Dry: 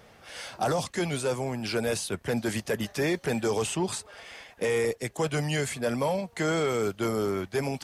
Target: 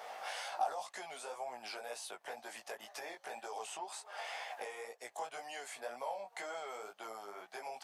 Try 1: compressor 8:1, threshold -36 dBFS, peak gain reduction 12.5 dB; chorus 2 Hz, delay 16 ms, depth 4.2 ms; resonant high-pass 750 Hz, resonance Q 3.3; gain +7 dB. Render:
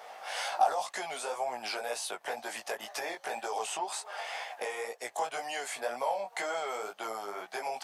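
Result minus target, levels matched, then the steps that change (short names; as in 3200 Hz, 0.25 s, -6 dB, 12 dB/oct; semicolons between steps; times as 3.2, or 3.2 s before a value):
compressor: peak gain reduction -9 dB
change: compressor 8:1, threshold -46.5 dBFS, peak gain reduction 22 dB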